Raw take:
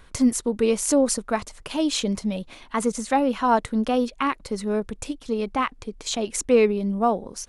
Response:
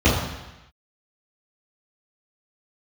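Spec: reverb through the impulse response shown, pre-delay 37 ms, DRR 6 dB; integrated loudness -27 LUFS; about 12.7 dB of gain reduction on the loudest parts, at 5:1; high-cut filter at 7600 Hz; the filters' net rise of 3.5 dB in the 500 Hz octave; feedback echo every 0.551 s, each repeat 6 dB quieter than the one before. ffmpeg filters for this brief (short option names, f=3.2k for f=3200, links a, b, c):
-filter_complex "[0:a]lowpass=7.6k,equalizer=f=500:t=o:g=4,acompressor=threshold=-24dB:ratio=5,aecho=1:1:551|1102|1653|2204|2755|3306:0.501|0.251|0.125|0.0626|0.0313|0.0157,asplit=2[a][b];[1:a]atrim=start_sample=2205,adelay=37[c];[b][c]afir=irnorm=-1:irlink=0,volume=-27dB[d];[a][d]amix=inputs=2:normalize=0,volume=-2dB"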